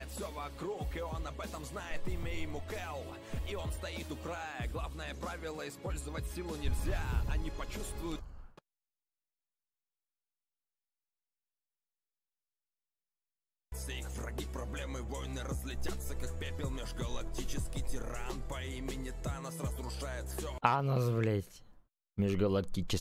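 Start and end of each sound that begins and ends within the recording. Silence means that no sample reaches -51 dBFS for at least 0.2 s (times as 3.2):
13.72–21.78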